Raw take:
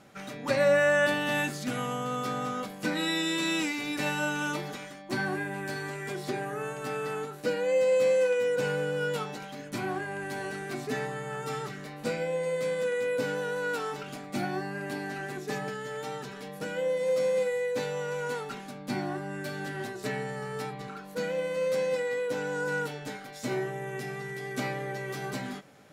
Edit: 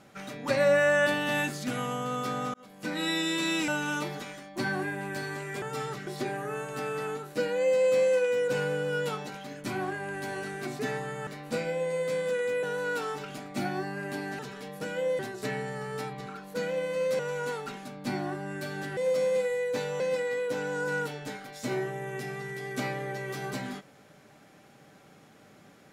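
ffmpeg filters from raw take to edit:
-filter_complex "[0:a]asplit=12[s0][s1][s2][s3][s4][s5][s6][s7][s8][s9][s10][s11];[s0]atrim=end=2.54,asetpts=PTS-STARTPTS,afade=t=out:st=2.536:d=0.004:c=hsin[s12];[s1]atrim=start=2.54:end=3.682,asetpts=PTS-STARTPTS,afade=t=in:d=0.54[s13];[s2]atrim=start=4.208:end=6.152[s14];[s3]atrim=start=11.348:end=11.802[s15];[s4]atrim=start=6.148:end=11.352[s16];[s5]atrim=start=11.798:end=13.162[s17];[s6]atrim=start=13.408:end=15.172[s18];[s7]atrim=start=16.188:end=16.992[s19];[s8]atrim=start=19.798:end=21.802[s20];[s9]atrim=start=18.018:end=19.802[s21];[s10]atrim=start=16.988:end=18.022[s22];[s11]atrim=start=21.798[s23];[s12][s13]concat=n=2:v=0:a=1[s24];[s24][s14]acrossfade=d=0.004:c1=hsin:c2=hsin[s25];[s25][s15]acrossfade=d=0.004:c1=hsin:c2=hsin[s26];[s26][s16]acrossfade=d=0.004:c1=hsin:c2=hsin[s27];[s27][s17]acrossfade=d=0.004:c1=hsin:c2=hsin[s28];[s28][s18]acrossfade=d=0.004:c1=hsin:c2=hsin[s29];[s29][s19]acrossfade=d=0.004:c1=hsin:c2=hsin[s30];[s30][s20]acrossfade=d=0.004:c1=hsin:c2=hsin[s31];[s31][s21]acrossfade=d=0.004:c1=hsin:c2=hsin[s32];[s32][s22]acrossfade=d=0.004:c1=hsin:c2=hsin[s33];[s33][s23]acrossfade=d=0.004:c1=hsin:c2=hsin"

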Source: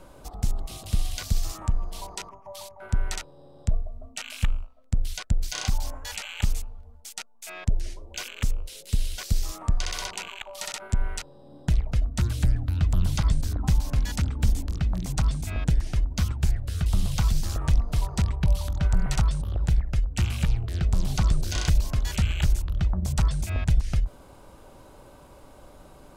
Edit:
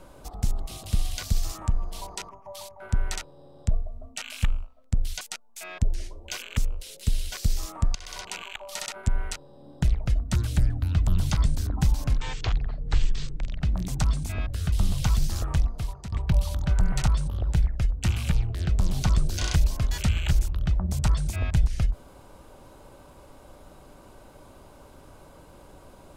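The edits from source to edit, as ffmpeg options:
-filter_complex "[0:a]asplit=7[s0][s1][s2][s3][s4][s5][s6];[s0]atrim=end=5.212[s7];[s1]atrim=start=7.068:end=9.81,asetpts=PTS-STARTPTS,afade=t=out:st=2.738:d=0.004:c=hsin:silence=0.125893[s8];[s2]atrim=start=9.81:end=14.034,asetpts=PTS-STARTPTS,afade=t=in:d=0.45:silence=0.125893[s9];[s3]atrim=start=14.03:end=14.8,asetpts=PTS-STARTPTS,asetrate=23373,aresample=44100[s10];[s4]atrim=start=14.796:end=15.652[s11];[s5]atrim=start=16.608:end=18.26,asetpts=PTS-STARTPTS,afade=t=out:st=0.972:d=0.68:silence=0.149624[s12];[s6]atrim=start=18.26,asetpts=PTS-STARTPTS,afade=t=in:d=0.004:c=hsin:silence=0.149624[s13];[s8][s9]concat=n=2:v=0:a=1[s14];[s7][s14]acrossfade=d=0.004:c1=hsin:c2=hsin[s15];[s15][s10]acrossfade=d=0.004:c1=hsin:c2=hsin[s16];[s16][s11]acrossfade=d=0.004:c1=hsin:c2=hsin[s17];[s12][s13]concat=n=2:v=0:a=1[s18];[s17][s18]acrossfade=d=0.004:c1=hsin:c2=hsin"

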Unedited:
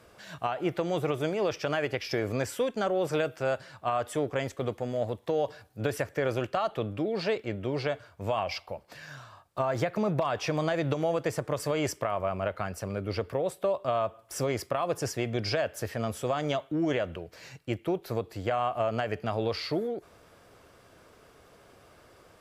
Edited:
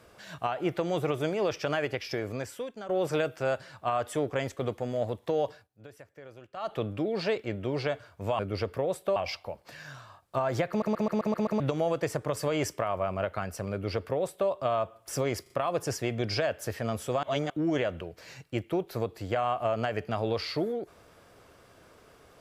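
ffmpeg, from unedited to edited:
-filter_complex "[0:a]asplit=17[s0][s1][s2][s3][s4][s5][s6][s7][s8][s9][s10][s11][s12][s13][s14][s15][s16];[s0]atrim=end=2.89,asetpts=PTS-STARTPTS,afade=t=out:st=1.75:d=1.14:silence=0.211349[s17];[s1]atrim=start=2.89:end=5.68,asetpts=PTS-STARTPTS,afade=t=in:d=0.004:c=hsin:silence=0.211349,afade=t=out:st=2.57:d=0.22:silence=0.105925[s18];[s2]atrim=start=5.68:end=6.53,asetpts=PTS-STARTPTS,volume=0.106[s19];[s3]atrim=start=6.53:end=8.392,asetpts=PTS-STARTPTS,afade=t=in:d=0.22:silence=0.105925[s20];[s4]atrim=start=12.948:end=13.722[s21];[s5]atrim=start=8.388:end=10.052[s22];[s6]atrim=start=9.918:end=10.052[s23];[s7]atrim=start=9.918:end=10.052[s24];[s8]atrim=start=9.918:end=10.052[s25];[s9]atrim=start=9.918:end=10.052[s26];[s10]atrim=start=9.918:end=10.052[s27];[s11]atrim=start=9.918:end=10.052[s28];[s12]atrim=start=10.828:end=14.692[s29];[s13]atrim=start=14.648:end=14.692[s30];[s14]atrim=start=14.648:end=16.382[s31];[s15]atrim=start=16.378:end=16.652,asetpts=PTS-STARTPTS,areverse[s32];[s16]atrim=start=16.648[s33];[s17][s18][s19][s20]concat=n=4:v=0:a=1[s34];[s34][s21]acrossfade=d=0.004:c1=hsin:c2=hsin[s35];[s35][s22]acrossfade=d=0.004:c1=hsin:c2=hsin[s36];[s36][s23]acrossfade=d=0.004:c1=hsin:c2=hsin[s37];[s37][s24]acrossfade=d=0.004:c1=hsin:c2=hsin[s38];[s38][s25]acrossfade=d=0.004:c1=hsin:c2=hsin[s39];[s39][s26]acrossfade=d=0.004:c1=hsin:c2=hsin[s40];[s40][s27]acrossfade=d=0.004:c1=hsin:c2=hsin[s41];[s41][s28]acrossfade=d=0.004:c1=hsin:c2=hsin[s42];[s42][s29]acrossfade=d=0.004:c1=hsin:c2=hsin[s43];[s43][s30]acrossfade=d=0.004:c1=hsin:c2=hsin[s44];[s44][s31]acrossfade=d=0.004:c1=hsin:c2=hsin[s45];[s45][s32]acrossfade=d=0.004:c1=hsin:c2=hsin[s46];[s46][s33]acrossfade=d=0.004:c1=hsin:c2=hsin"

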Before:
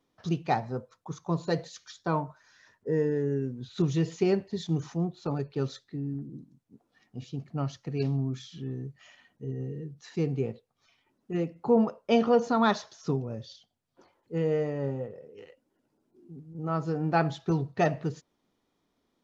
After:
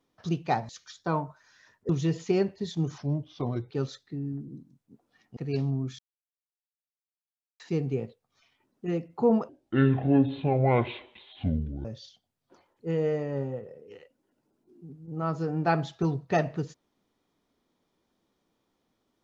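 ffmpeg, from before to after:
-filter_complex "[0:a]asplit=10[s0][s1][s2][s3][s4][s5][s6][s7][s8][s9];[s0]atrim=end=0.692[s10];[s1]atrim=start=1.688:end=2.892[s11];[s2]atrim=start=3.808:end=4.904[s12];[s3]atrim=start=4.9:end=5.51,asetpts=PTS-STARTPTS,asetrate=37485,aresample=44100,atrim=end_sample=31648,asetpts=PTS-STARTPTS[s13];[s4]atrim=start=5.506:end=7.182[s14];[s5]atrim=start=7.828:end=8.45,asetpts=PTS-STARTPTS,afade=t=out:st=0.618:d=0.004:c=hsin[s15];[s6]atrim=start=8.45:end=10.06,asetpts=PTS-STARTPTS,volume=0[s16];[s7]atrim=start=10.06:end=11.954,asetpts=PTS-STARTPTS,afade=t=in:d=0.004:c=hsin[s17];[s8]atrim=start=11.95:end=13.32,asetpts=PTS-STARTPTS,asetrate=25578,aresample=44100,atrim=end_sample=104167,asetpts=PTS-STARTPTS[s18];[s9]atrim=start=13.316[s19];[s10][s11]acrossfade=d=0.004:c1=hsin:c2=hsin[s20];[s20][s12]acrossfade=d=0.004:c1=hsin:c2=hsin[s21];[s21][s13]acrossfade=d=0.004:c1=hsin:c2=hsin[s22];[s22][s14]acrossfade=d=0.004:c1=hsin:c2=hsin[s23];[s15][s16][s17]concat=n=3:v=0:a=1[s24];[s23][s24]acrossfade=d=0.004:c1=hsin:c2=hsin[s25];[s25][s18]acrossfade=d=0.004:c1=hsin:c2=hsin[s26];[s26][s19]acrossfade=d=0.004:c1=hsin:c2=hsin"

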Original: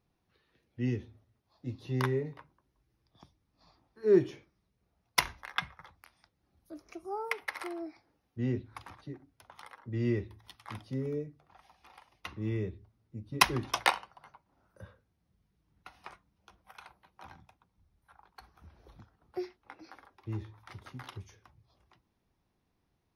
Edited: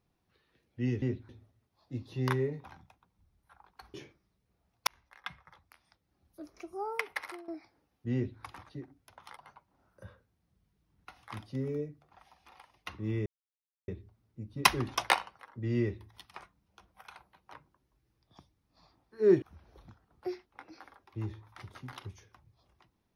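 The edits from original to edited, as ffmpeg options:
-filter_complex "[0:a]asplit=14[s0][s1][s2][s3][s4][s5][s6][s7][s8][s9][s10][s11][s12][s13];[s0]atrim=end=1.022[s14];[s1]atrim=start=8.458:end=8.732[s15];[s2]atrim=start=1.018:end=2.372[s16];[s3]atrim=start=17.228:end=18.532[s17];[s4]atrim=start=4.258:end=5.19,asetpts=PTS-STARTPTS,afade=t=out:st=0.928:d=0.004:c=hsin[s18];[s5]atrim=start=5.19:end=7.8,asetpts=PTS-STARTPTS,afade=t=in:d=1.71:c=qsin,afade=t=out:st=2.31:d=0.3:silence=0.16788[s19];[s6]atrim=start=7.8:end=9.692,asetpts=PTS-STARTPTS,afade=t=in:d=0.004:c=hsin:silence=0.16788[s20];[s7]atrim=start=14.148:end=16.012[s21];[s8]atrim=start=10.608:end=12.64,asetpts=PTS-STARTPTS,afade=t=out:st=2.028:d=0.004:c=hsin,apad=pad_dur=0.62[s22];[s9]atrim=start=12.64:end=14.152,asetpts=PTS-STARTPTS,afade=t=in:d=0.004:c=hsin[s23];[s10]atrim=start=9.688:end=10.612[s24];[s11]atrim=start=16.008:end=17.232[s25];[s12]atrim=start=2.368:end=4.262[s26];[s13]atrim=start=18.528[s27];[s14][s15]acrossfade=d=0.004:c1=hsin:c2=hsin[s28];[s28][s16]acrossfade=d=0.004:c1=hsin:c2=hsin[s29];[s29][s17]acrossfade=d=0.004:c1=hsin:c2=hsin[s30];[s18][s19][s20]concat=n=3:v=0:a=1[s31];[s30][s31]acrossfade=d=0.004:c1=hsin:c2=hsin[s32];[s32][s21]acrossfade=d=0.004:c1=hsin:c2=hsin[s33];[s22][s23]concat=n=2:v=0:a=1[s34];[s33][s34]acrossfade=d=0.004:c1=hsin:c2=hsin[s35];[s35][s24]acrossfade=d=0.004:c1=hsin:c2=hsin[s36];[s36][s25]acrossfade=d=0.004:c1=hsin:c2=hsin[s37];[s37][s26]acrossfade=d=0.004:c1=hsin:c2=hsin[s38];[s38][s27]acrossfade=d=0.004:c1=hsin:c2=hsin"

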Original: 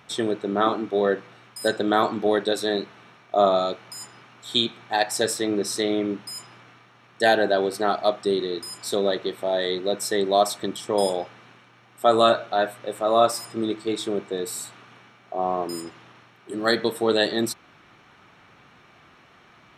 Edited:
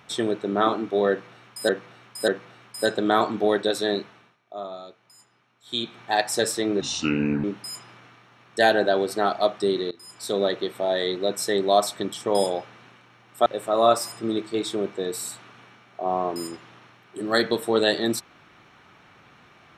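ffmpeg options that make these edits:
-filter_complex "[0:a]asplit=9[s0][s1][s2][s3][s4][s5][s6][s7][s8];[s0]atrim=end=1.692[s9];[s1]atrim=start=1.098:end=1.692[s10];[s2]atrim=start=1.098:end=3.19,asetpts=PTS-STARTPTS,afade=t=out:st=1.732:d=0.36:silence=0.158489[s11];[s3]atrim=start=3.19:end=4.45,asetpts=PTS-STARTPTS,volume=0.158[s12];[s4]atrim=start=4.45:end=5.634,asetpts=PTS-STARTPTS,afade=t=in:d=0.36:silence=0.158489[s13];[s5]atrim=start=5.63:end=6.07,asetpts=PTS-STARTPTS,asetrate=30870,aresample=44100[s14];[s6]atrim=start=6.066:end=8.54,asetpts=PTS-STARTPTS,afade=t=out:st=2.47:d=0.004:c=hsin:silence=0.1[s15];[s7]atrim=start=8.54:end=12.092,asetpts=PTS-STARTPTS,afade=t=in:d=0.52:silence=0.1[s16];[s8]atrim=start=12.788[s17];[s9][s10]acrossfade=d=0.004:c1=hsin:c2=hsin[s18];[s11][s12][s13]concat=n=3:v=0:a=1[s19];[s18][s19]acrossfade=d=0.004:c1=hsin:c2=hsin[s20];[s20][s14]acrossfade=d=0.004:c1=hsin:c2=hsin[s21];[s15][s16]concat=n=2:v=0:a=1[s22];[s21][s22]acrossfade=d=0.004:c1=hsin:c2=hsin[s23];[s23][s17]acrossfade=d=0.004:c1=hsin:c2=hsin"

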